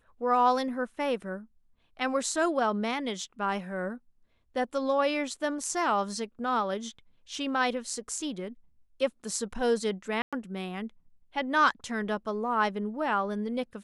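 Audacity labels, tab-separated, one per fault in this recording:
10.220000	10.330000	dropout 106 ms

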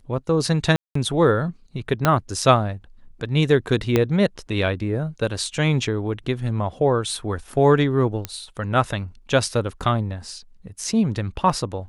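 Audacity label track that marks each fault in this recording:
0.760000	0.950000	dropout 194 ms
2.050000	2.050000	pop -3 dBFS
3.960000	3.960000	pop -5 dBFS
8.250000	8.250000	pop -11 dBFS

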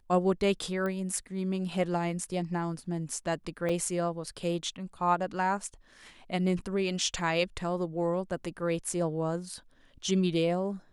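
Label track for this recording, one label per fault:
0.860000	0.860000	pop -23 dBFS
3.690000	3.690000	dropout 4.6 ms

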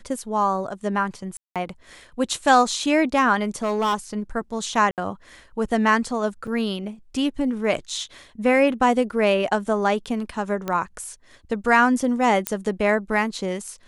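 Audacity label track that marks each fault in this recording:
1.370000	1.560000	dropout 187 ms
3.630000	3.950000	clipped -18 dBFS
4.910000	4.980000	dropout 68 ms
6.470000	6.470000	dropout 4.2 ms
10.680000	10.680000	pop -13 dBFS
12.470000	12.470000	pop -4 dBFS

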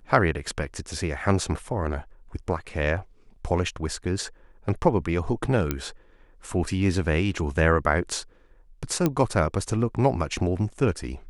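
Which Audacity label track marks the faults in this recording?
5.710000	5.710000	pop -10 dBFS
9.060000	9.060000	pop -9 dBFS

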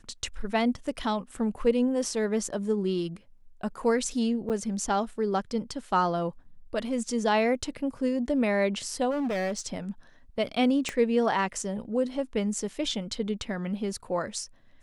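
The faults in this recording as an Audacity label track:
4.490000	4.500000	dropout 8.9 ms
9.100000	9.670000	clipped -26 dBFS
10.890000	10.890000	pop -16 dBFS

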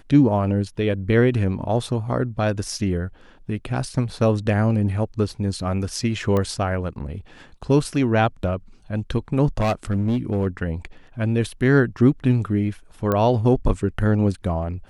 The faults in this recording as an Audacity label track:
6.370000	6.370000	pop -12 dBFS
9.580000	10.470000	clipped -17 dBFS
13.120000	13.120000	pop -10 dBFS

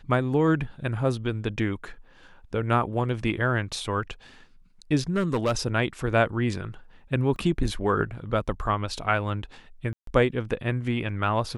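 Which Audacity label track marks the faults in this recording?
5.160000	5.520000	clipped -19 dBFS
7.360000	7.360000	dropout 2.3 ms
9.930000	10.070000	dropout 143 ms

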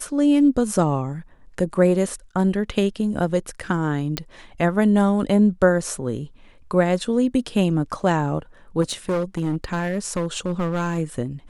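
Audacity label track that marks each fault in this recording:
4.170000	4.170000	pop -11 dBFS
8.810000	10.990000	clipped -18.5 dBFS

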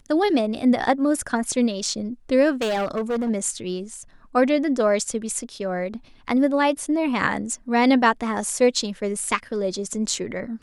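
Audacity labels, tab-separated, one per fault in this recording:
2.610000	3.300000	clipped -20.5 dBFS

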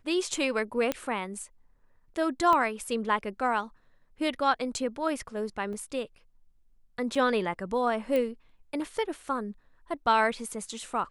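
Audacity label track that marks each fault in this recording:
0.920000	0.920000	pop -14 dBFS
2.530000	2.530000	pop -15 dBFS
5.730000	5.730000	dropout 2.3 ms
7.150000	7.160000	dropout 5.1 ms
8.160000	8.160000	pop -18 dBFS

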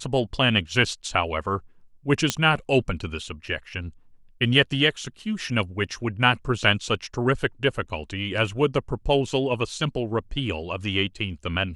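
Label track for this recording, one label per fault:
2.300000	2.300000	pop -5 dBFS

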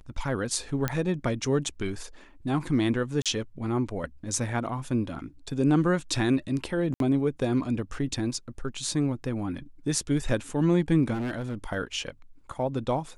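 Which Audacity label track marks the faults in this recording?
0.880000	0.880000	pop -11 dBFS
3.220000	3.260000	dropout 37 ms
6.940000	7.000000	dropout 62 ms
11.130000	11.550000	clipped -27.5 dBFS

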